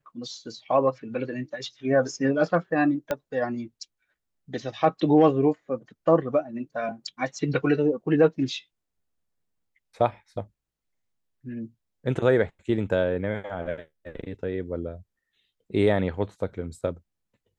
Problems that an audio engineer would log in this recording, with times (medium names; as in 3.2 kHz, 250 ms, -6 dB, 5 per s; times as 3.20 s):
3.11 s: pop -13 dBFS